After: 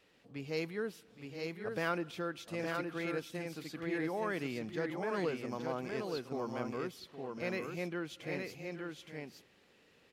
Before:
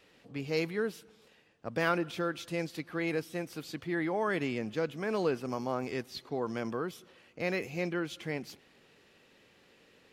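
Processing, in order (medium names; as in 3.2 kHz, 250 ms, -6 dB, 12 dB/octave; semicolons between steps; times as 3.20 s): multi-tap echo 819/867 ms -12.5/-4 dB; trim -5.5 dB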